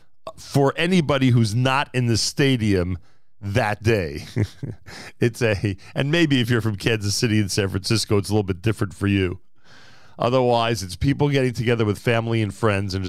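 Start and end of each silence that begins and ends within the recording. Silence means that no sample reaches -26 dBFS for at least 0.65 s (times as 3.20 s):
9.34–10.19 s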